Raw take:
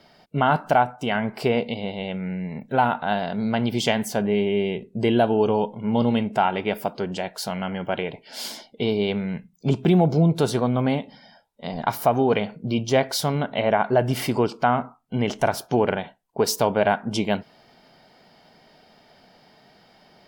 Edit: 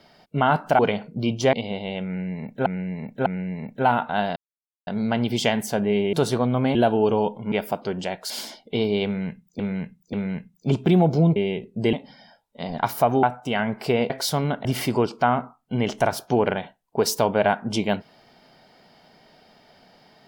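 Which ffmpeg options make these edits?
-filter_complex "[0:a]asplit=17[s0][s1][s2][s3][s4][s5][s6][s7][s8][s9][s10][s11][s12][s13][s14][s15][s16];[s0]atrim=end=0.792[s17];[s1]atrim=start=12.268:end=13.012[s18];[s2]atrim=start=1.658:end=2.792[s19];[s3]atrim=start=2.188:end=2.792[s20];[s4]atrim=start=2.188:end=3.29,asetpts=PTS-STARTPTS,afade=t=out:st=1.098:d=0.004:c=hsin,apad=pad_dur=0.51[s21];[s5]atrim=start=3.29:end=4.552,asetpts=PTS-STARTPTS,afade=t=in:d=0.004:c=hsin[s22];[s6]atrim=start=10.348:end=10.972[s23];[s7]atrim=start=5.118:end=5.892[s24];[s8]atrim=start=6.648:end=7.432[s25];[s9]atrim=start=8.368:end=9.662[s26];[s10]atrim=start=9.118:end=9.662[s27];[s11]atrim=start=9.118:end=10.352[s28];[s12]atrim=start=4.548:end=5.122[s29];[s13]atrim=start=10.968:end=12.272[s30];[s14]atrim=start=0.788:end=1.662[s31];[s15]atrim=start=13.008:end=13.562[s32];[s16]atrim=start=14.058[s33];[s17][s18]acrossfade=d=0.004:c1=hsin:c2=hsin[s34];[s34][s19]acrossfade=d=0.004:c1=hsin:c2=hsin[s35];[s35][s20]acrossfade=d=0.004:c1=hsin:c2=hsin[s36];[s21][s22]concat=n=2:v=0:a=1[s37];[s36][s37]acrossfade=d=0.004:c1=hsin:c2=hsin[s38];[s38][s23]acrossfade=d=0.004:c1=hsin:c2=hsin[s39];[s39][s24]acrossfade=d=0.004:c1=hsin:c2=hsin[s40];[s40][s25]acrossfade=d=0.004:c1=hsin:c2=hsin[s41];[s41][s26]acrossfade=d=0.004:c1=hsin:c2=hsin[s42];[s42][s27]acrossfade=d=0.004:c1=hsin:c2=hsin[s43];[s43][s28]acrossfade=d=0.004:c1=hsin:c2=hsin[s44];[s44][s29]acrossfade=d=0.004:c1=hsin:c2=hsin[s45];[s45][s30]acrossfade=d=0.004:c1=hsin:c2=hsin[s46];[s46][s31]acrossfade=d=0.004:c1=hsin:c2=hsin[s47];[s47][s32]acrossfade=d=0.004:c1=hsin:c2=hsin[s48];[s48][s33]acrossfade=d=0.004:c1=hsin:c2=hsin"

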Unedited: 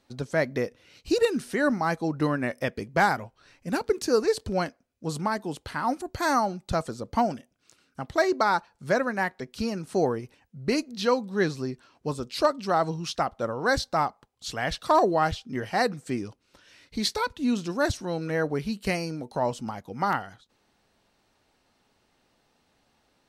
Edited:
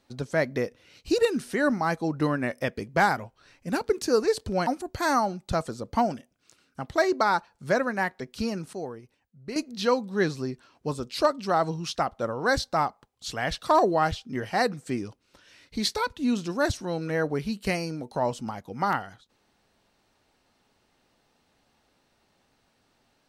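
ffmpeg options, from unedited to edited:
-filter_complex "[0:a]asplit=4[s0][s1][s2][s3];[s0]atrim=end=4.672[s4];[s1]atrim=start=5.868:end=9.932[s5];[s2]atrim=start=9.928:end=10.762,asetpts=PTS-STARTPTS,volume=0.282[s6];[s3]atrim=start=10.758[s7];[s4][s5]acrossfade=d=0.004:c1=hsin:c2=hsin[s8];[s8][s6]acrossfade=d=0.004:c1=hsin:c2=hsin[s9];[s9][s7]acrossfade=d=0.004:c1=hsin:c2=hsin"

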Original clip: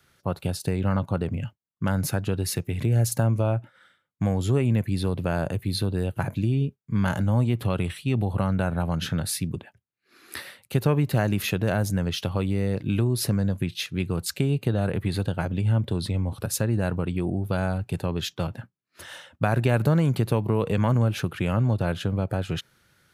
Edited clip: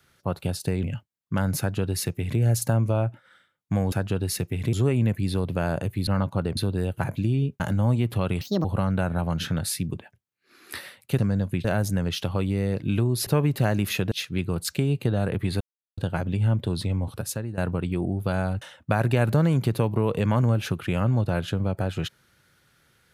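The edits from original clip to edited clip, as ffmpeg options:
-filter_complex "[0:a]asplit=16[s0][s1][s2][s3][s4][s5][s6][s7][s8][s9][s10][s11][s12][s13][s14][s15];[s0]atrim=end=0.832[s16];[s1]atrim=start=1.328:end=4.422[s17];[s2]atrim=start=2.088:end=2.902[s18];[s3]atrim=start=4.418:end=5.762[s19];[s4]atrim=start=0.828:end=1.332[s20];[s5]atrim=start=5.758:end=6.792[s21];[s6]atrim=start=7.088:end=7.904[s22];[s7]atrim=start=7.9:end=8.26,asetpts=PTS-STARTPTS,asetrate=67473,aresample=44100,atrim=end_sample=10376,asetpts=PTS-STARTPTS[s23];[s8]atrim=start=8.256:end=10.802[s24];[s9]atrim=start=13.268:end=13.732[s25];[s10]atrim=start=11.648:end=13.272[s26];[s11]atrim=start=10.798:end=11.652[s27];[s12]atrim=start=13.728:end=15.22,asetpts=PTS-STARTPTS,afade=t=out:st=1.488:d=0.004:c=hsin,apad=pad_dur=0.37[s28];[s13]atrim=start=15.22:end=16.82,asetpts=PTS-STARTPTS,afade=t=in:d=0.004:c=hsin,afade=t=out:st=1.08:d=0.52:silence=0.223872[s29];[s14]atrim=start=16.82:end=17.862,asetpts=PTS-STARTPTS,afade=t=in:d=0.004:c=hsin:silence=0.223872[s30];[s15]atrim=start=19.138[s31];[s16][s17]acrossfade=d=0.004:c1=hsin:c2=hsin[s32];[s32][s18]acrossfade=d=0.004:c1=hsin:c2=hsin[s33];[s33][s19]acrossfade=d=0.004:c1=hsin:c2=hsin[s34];[s34][s20]acrossfade=d=0.004:c1=hsin:c2=hsin[s35];[s35][s21]acrossfade=d=0.004:c1=hsin:c2=hsin[s36];[s36][s22]acrossfade=d=0.004:c1=hsin:c2=hsin[s37];[s37][s23]acrossfade=d=0.004:c1=hsin:c2=hsin[s38];[s38][s24]acrossfade=d=0.004:c1=hsin:c2=hsin[s39];[s39][s25]acrossfade=d=0.004:c1=hsin:c2=hsin[s40];[s40][s26]acrossfade=d=0.004:c1=hsin:c2=hsin[s41];[s41][s27]acrossfade=d=0.004:c1=hsin:c2=hsin[s42];[s28][s29][s30]concat=n=3:v=0:a=1[s43];[s42][s43]acrossfade=d=0.004:c1=hsin:c2=hsin[s44];[s44][s31]acrossfade=d=0.004:c1=hsin:c2=hsin"

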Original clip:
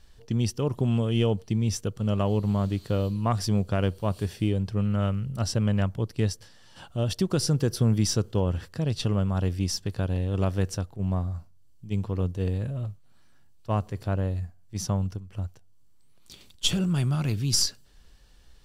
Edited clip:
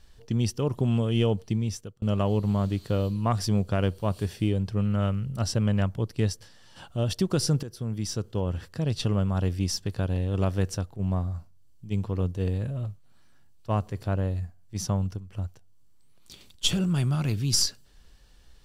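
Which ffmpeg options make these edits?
-filter_complex "[0:a]asplit=3[s0][s1][s2];[s0]atrim=end=2.02,asetpts=PTS-STARTPTS,afade=t=out:st=1.5:d=0.52[s3];[s1]atrim=start=2.02:end=7.63,asetpts=PTS-STARTPTS,afade=t=in:d=0.004:c=hsin,afade=t=out:st=5.606:d=0.004:c=hsin:silence=0.177828[s4];[s2]atrim=start=7.63,asetpts=PTS-STARTPTS,afade=t=in:d=1.26:silence=0.177828[s5];[s3][s4][s5]concat=n=3:v=0:a=1"

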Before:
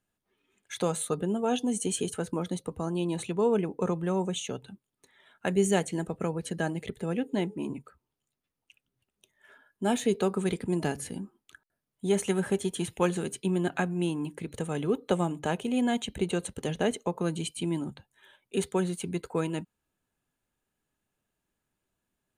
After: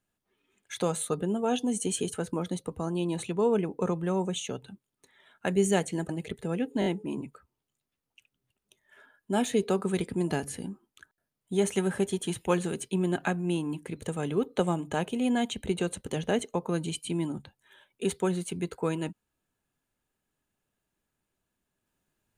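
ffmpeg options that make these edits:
-filter_complex "[0:a]asplit=5[s0][s1][s2][s3][s4];[s0]atrim=end=6.092[s5];[s1]atrim=start=6.668:end=7.402[s6];[s2]atrim=start=7.378:end=7.402[s7];[s3]atrim=start=7.378:end=7.402[s8];[s4]atrim=start=7.378[s9];[s5][s6]acrossfade=d=0.004:c1=hsin:c2=hsin[s10];[s10][s7]acrossfade=d=0.004:c1=hsin:c2=hsin[s11];[s11][s8]acrossfade=d=0.004:c1=hsin:c2=hsin[s12];[s12][s9]acrossfade=d=0.004:c1=hsin:c2=hsin"

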